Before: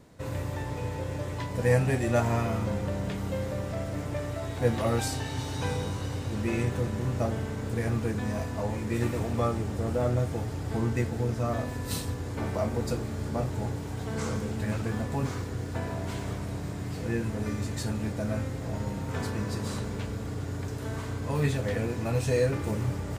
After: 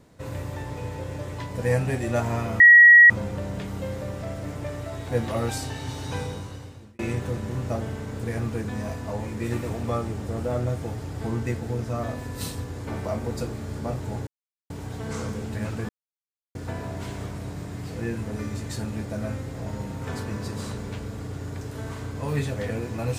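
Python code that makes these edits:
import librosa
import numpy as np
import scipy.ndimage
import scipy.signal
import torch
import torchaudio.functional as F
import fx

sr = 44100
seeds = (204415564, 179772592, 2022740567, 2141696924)

y = fx.edit(x, sr, fx.insert_tone(at_s=2.6, length_s=0.5, hz=1910.0, db=-7.5),
    fx.fade_out_span(start_s=5.67, length_s=0.82),
    fx.insert_silence(at_s=13.77, length_s=0.43),
    fx.silence(start_s=14.96, length_s=0.66), tone=tone)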